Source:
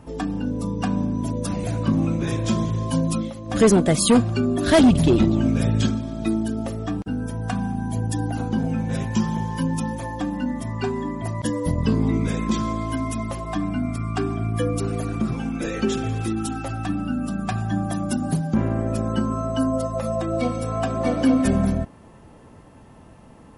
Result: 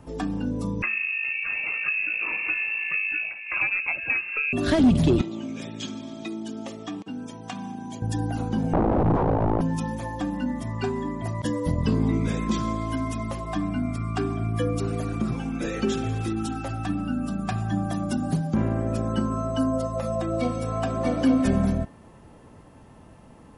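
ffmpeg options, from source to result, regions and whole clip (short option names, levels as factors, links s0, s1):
-filter_complex "[0:a]asettb=1/sr,asplit=3[s0][s1][s2];[s0]atrim=end=0.824[s3];[s1]atrim=start=0.82:end=4.53,asetpts=PTS-STARTPTS,afade=t=in:d=0.004:c=qsin,afade=t=out:st=3.706:d=0.004:c=qsin,highshelf=f=2100:g=8.5,lowpass=f=2400:t=q:w=0.5098,lowpass=f=2400:t=q:w=0.6013,lowpass=f=2400:t=q:w=0.9,lowpass=f=2400:t=q:w=2.563,afreqshift=-2800[s4];[s2]atrim=start=4.526[s5];[s3][s4]acrossfade=d=0.004:c1=hsin:c2=qsin[s6];[s6][s5]acrossfade=d=0.004:c1=qsin:c2=hsin,asettb=1/sr,asplit=3[s7][s8][s9];[s7]atrim=end=5.214[s10];[s8]atrim=start=5.21:end=8.02,asetpts=PTS-STARTPTS,afade=t=in:d=0.004:c=qsin,afade=t=out:st=2.806:d=0.004:c=qsin,acompressor=threshold=0.0891:ratio=5:attack=3.2:release=140:knee=1:detection=peak,highpass=270,equalizer=f=480:t=q:w=4:g=-6,equalizer=f=700:t=q:w=4:g=-4,equalizer=f=1500:t=q:w=4:g=-7,equalizer=f=2300:t=q:w=4:g=3,equalizer=f=3300:t=q:w=4:g=5,equalizer=f=6600:t=q:w=4:g=5,lowpass=f=7900:w=0.5412,lowpass=f=7900:w=1.3066[s11];[s9]atrim=start=8.016[s12];[s10][s11]acrossfade=d=0.004:c1=hsin:c2=qsin[s13];[s13][s12]acrossfade=d=0.004:c1=qsin:c2=hsin,asettb=1/sr,asplit=3[s14][s15][s16];[s14]atrim=end=8.734[s17];[s15]atrim=start=8.73:end=9.61,asetpts=PTS-STARTPTS,afade=t=in:d=0.004:c=qsin,afade=t=out:st=0.876:d=0.004:c=qsin,equalizer=f=72:w=0.46:g=14.5,aeval=exprs='(mod(4.47*val(0)+1,2)-1)/4.47':c=same,lowpass=f=840:t=q:w=1.9[s18];[s16]atrim=start=9.606[s19];[s17][s18]acrossfade=d=0.004:c1=hsin:c2=qsin[s20];[s20][s19]acrossfade=d=0.004:c1=qsin:c2=hsin,acrossover=split=8100[s21][s22];[s22]acompressor=threshold=0.00316:ratio=4:attack=1:release=60[s23];[s21][s23]amix=inputs=2:normalize=0,bandreject=f=224.3:t=h:w=4,bandreject=f=448.6:t=h:w=4,bandreject=f=672.9:t=h:w=4,bandreject=f=897.2:t=h:w=4,bandreject=f=1121.5:t=h:w=4,bandreject=f=1345.8:t=h:w=4,bandreject=f=1570.1:t=h:w=4,bandreject=f=1794.4:t=h:w=4,bandreject=f=2018.7:t=h:w=4,bandreject=f=2243:t=h:w=4,bandreject=f=2467.3:t=h:w=4,bandreject=f=2691.6:t=h:w=4,bandreject=f=2915.9:t=h:w=4,bandreject=f=3140.2:t=h:w=4,bandreject=f=3364.5:t=h:w=4,bandreject=f=3588.8:t=h:w=4,bandreject=f=3813.1:t=h:w=4,bandreject=f=4037.4:t=h:w=4,bandreject=f=4261.7:t=h:w=4,acrossover=split=340[s24][s25];[s25]acompressor=threshold=0.0891:ratio=6[s26];[s24][s26]amix=inputs=2:normalize=0,volume=0.794"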